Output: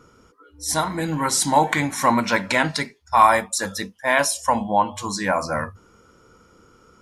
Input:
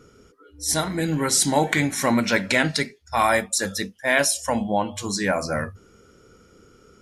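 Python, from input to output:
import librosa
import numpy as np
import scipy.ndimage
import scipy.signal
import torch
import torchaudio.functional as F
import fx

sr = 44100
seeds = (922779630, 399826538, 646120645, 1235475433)

y = fx.peak_eq(x, sr, hz=990.0, db=12.0, octaves=0.64)
y = fx.notch(y, sr, hz=410.0, q=12.0)
y = y * librosa.db_to_amplitude(-1.5)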